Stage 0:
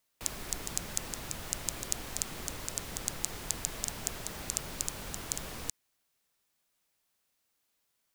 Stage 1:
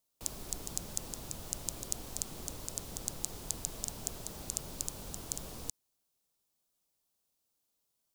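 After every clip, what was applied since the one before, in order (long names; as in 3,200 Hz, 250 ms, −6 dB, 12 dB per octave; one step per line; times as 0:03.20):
parametric band 1,900 Hz −11 dB 1.4 octaves
level −2 dB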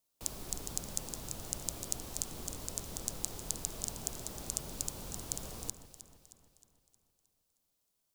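delay that swaps between a low-pass and a high-pass 156 ms, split 2,200 Hz, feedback 70%, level −10 dB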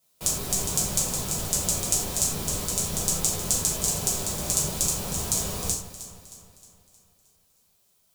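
reverb whose tail is shaped and stops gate 130 ms falling, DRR −6 dB
level +7 dB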